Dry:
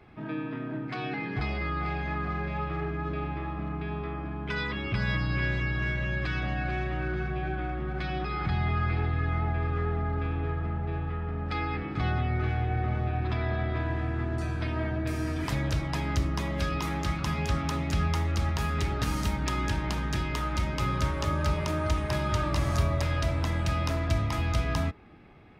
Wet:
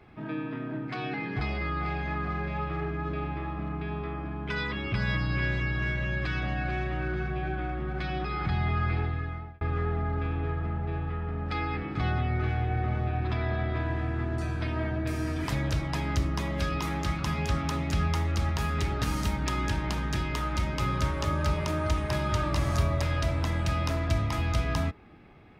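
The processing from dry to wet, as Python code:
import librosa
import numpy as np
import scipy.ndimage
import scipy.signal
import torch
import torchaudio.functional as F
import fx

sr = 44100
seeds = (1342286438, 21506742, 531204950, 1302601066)

y = fx.edit(x, sr, fx.fade_out_span(start_s=8.96, length_s=0.65), tone=tone)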